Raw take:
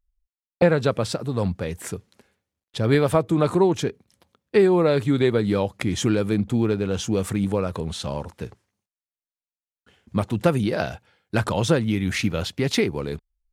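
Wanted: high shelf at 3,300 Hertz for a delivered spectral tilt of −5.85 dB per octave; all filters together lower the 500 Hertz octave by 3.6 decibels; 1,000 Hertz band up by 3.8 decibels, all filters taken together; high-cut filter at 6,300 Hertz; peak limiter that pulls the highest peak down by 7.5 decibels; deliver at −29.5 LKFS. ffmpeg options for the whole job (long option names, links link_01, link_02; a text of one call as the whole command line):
ffmpeg -i in.wav -af "lowpass=6300,equalizer=frequency=500:width_type=o:gain=-6,equalizer=frequency=1000:width_type=o:gain=7,highshelf=frequency=3300:gain=-3.5,volume=-4dB,alimiter=limit=-16dB:level=0:latency=1" out.wav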